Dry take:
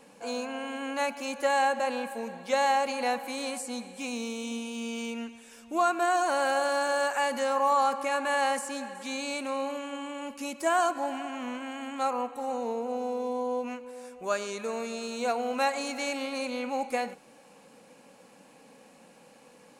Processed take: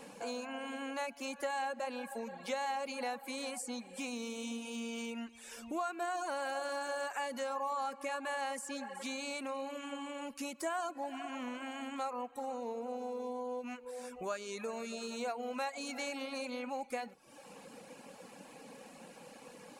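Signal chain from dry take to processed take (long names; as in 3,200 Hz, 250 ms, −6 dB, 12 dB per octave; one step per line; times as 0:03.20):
reverb reduction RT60 0.65 s
downward compressor 2.5 to 1, threshold −46 dBFS, peak gain reduction 16 dB
level +4 dB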